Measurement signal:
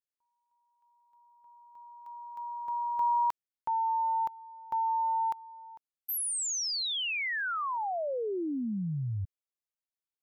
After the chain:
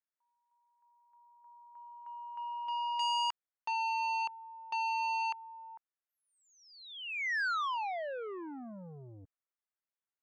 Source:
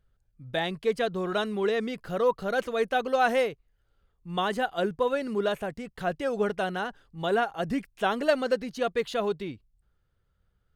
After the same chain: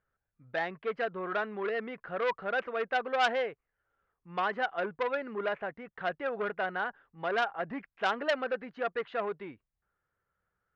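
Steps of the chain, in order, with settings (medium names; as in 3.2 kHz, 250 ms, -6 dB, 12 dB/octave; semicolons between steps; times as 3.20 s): low-pass 1.8 kHz 24 dB/octave; tilt EQ +4.5 dB/octave; transformer saturation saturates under 2.2 kHz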